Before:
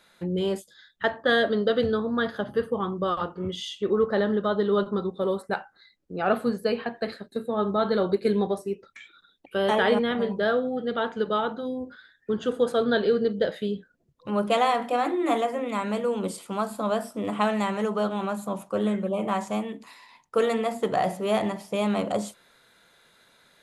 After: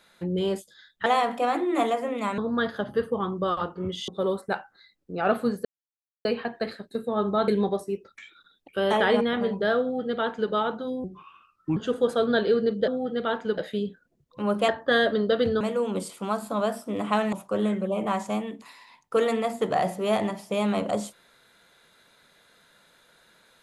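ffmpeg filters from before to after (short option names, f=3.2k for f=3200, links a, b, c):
-filter_complex "[0:a]asplit=13[a][b][c][d][e][f][g][h][i][j][k][l][m];[a]atrim=end=1.062[n];[b]atrim=start=14.568:end=15.892[o];[c]atrim=start=1.978:end=3.682[p];[d]atrim=start=5.088:end=6.66,asetpts=PTS-STARTPTS,afade=t=out:st=1.568:d=0.004:c=hsin,apad=pad_dur=0.6[q];[e]atrim=start=6.66:end=7.892,asetpts=PTS-STARTPTS,afade=t=in:d=0.004:c=hsin[r];[f]atrim=start=8.258:end=11.824[s];[g]atrim=start=11.82:end=12.35,asetpts=PTS-STARTPTS,asetrate=32193,aresample=44100[t];[h]atrim=start=12.346:end=13.462[u];[i]atrim=start=10.588:end=11.292[v];[j]atrim=start=13.458:end=14.572[w];[k]atrim=start=1.058:end=1.982[x];[l]atrim=start=15.888:end=17.612[y];[m]atrim=start=18.538[z];[n][o]acrossfade=d=0.004:c1=hsin:c2=hsin[aa];[aa][p]acrossfade=d=0.004:c1=hsin:c2=hsin[ab];[q][r]concat=n=2:v=0:a=1[ac];[ab][ac]acrossfade=d=0.004:c1=hsin:c2=hsin[ad];[ad][s]acrossfade=d=0.004:c1=hsin:c2=hsin[ae];[ae][t]acrossfade=d=0.004:c1=hsin:c2=hsin[af];[af][u]acrossfade=d=0.004:c1=hsin:c2=hsin[ag];[ag][v]acrossfade=d=0.004:c1=hsin:c2=hsin[ah];[ah][w]acrossfade=d=0.004:c1=hsin:c2=hsin[ai];[ai][x]acrossfade=d=0.004:c1=hsin:c2=hsin[aj];[aj][y]acrossfade=d=0.004:c1=hsin:c2=hsin[ak];[ak][z]acrossfade=d=0.004:c1=hsin:c2=hsin"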